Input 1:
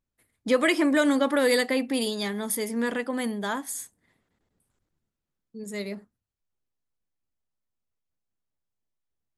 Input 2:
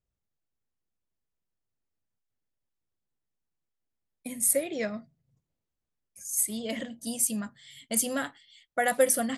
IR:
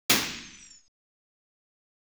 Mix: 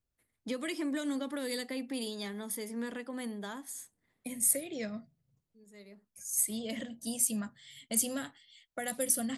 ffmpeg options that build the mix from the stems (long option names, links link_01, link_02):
-filter_complex "[0:a]volume=-9dB[link_01];[1:a]volume=-2.5dB,asplit=2[link_02][link_03];[link_03]apad=whole_len=413583[link_04];[link_01][link_04]sidechaincompress=threshold=-46dB:ratio=6:attack=12:release=1490[link_05];[link_05][link_02]amix=inputs=2:normalize=0,acrossover=split=320|3000[link_06][link_07][link_08];[link_07]acompressor=threshold=-41dB:ratio=4[link_09];[link_06][link_09][link_08]amix=inputs=3:normalize=0"